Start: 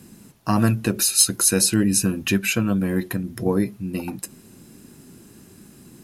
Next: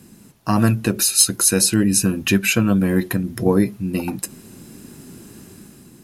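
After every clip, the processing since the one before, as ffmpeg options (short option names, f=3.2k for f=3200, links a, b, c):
-af "dynaudnorm=f=120:g=9:m=6dB"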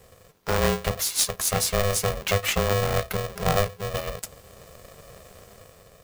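-af "equalizer=f=10k:w=7.7:g=-12.5,aeval=exprs='val(0)*sgn(sin(2*PI*300*n/s))':c=same,volume=-6.5dB"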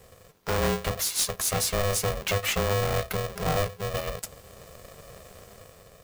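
-af "asoftclip=type=tanh:threshold=-19dB"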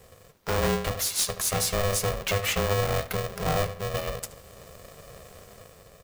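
-filter_complex "[0:a]asplit=2[a][b];[b]adelay=75,lowpass=f=3.7k:p=1,volume=-13dB,asplit=2[c][d];[d]adelay=75,lowpass=f=3.7k:p=1,volume=0.44,asplit=2[e][f];[f]adelay=75,lowpass=f=3.7k:p=1,volume=0.44,asplit=2[g][h];[h]adelay=75,lowpass=f=3.7k:p=1,volume=0.44[i];[a][c][e][g][i]amix=inputs=5:normalize=0"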